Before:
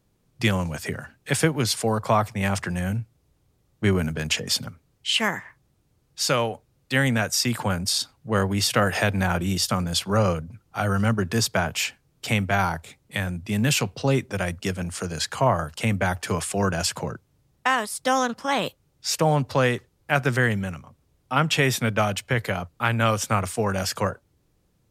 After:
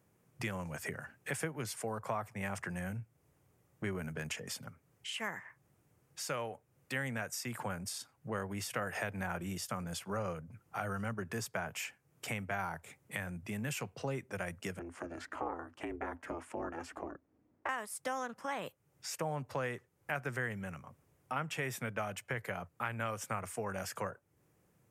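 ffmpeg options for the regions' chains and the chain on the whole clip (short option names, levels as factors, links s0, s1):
-filter_complex "[0:a]asettb=1/sr,asplit=3[s0][s1][s2];[s0]atrim=end=14.794[s3];[s1]atrim=start=14.79:end=17.69,asetpts=PTS-STARTPTS,afade=t=in:d=0.004:c=qsin,afade=t=out:st=2.896:d=0.004:c=qsin,lowpass=f=1100:p=1,aeval=exprs='val(0)*sin(2*PI*170*n/s)':c=same[s4];[s2]atrim=start=17.686[s5];[s3][s4]acrossfade=d=0.004:c1=hsin:c2=qsin[s6];[s6][s5]acrossfade=d=0.004:c1=qsin:c2=hsin,highpass=120,acompressor=threshold=0.00891:ratio=2.5,equalizer=f=250:t=o:w=1:g=-4,equalizer=f=2000:t=o:w=1:g=3,equalizer=f=4000:t=o:w=1:g=-11"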